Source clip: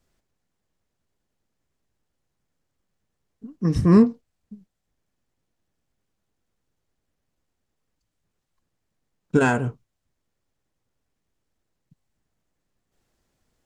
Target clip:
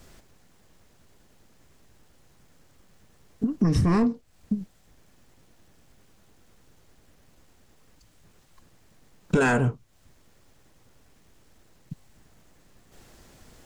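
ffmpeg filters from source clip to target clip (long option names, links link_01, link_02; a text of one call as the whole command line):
ffmpeg -i in.wav -af "apsyclip=20dB,acompressor=threshold=-22dB:ratio=5" out.wav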